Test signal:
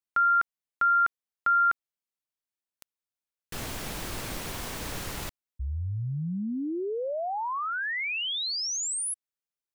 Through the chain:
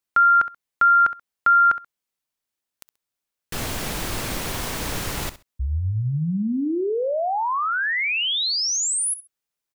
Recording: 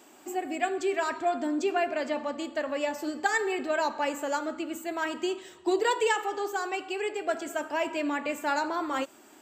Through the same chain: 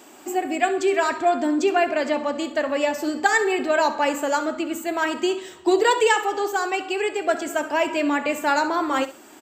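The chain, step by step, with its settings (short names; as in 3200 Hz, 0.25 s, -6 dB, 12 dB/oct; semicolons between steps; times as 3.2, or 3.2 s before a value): feedback echo 66 ms, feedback 20%, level -15 dB; gain +7.5 dB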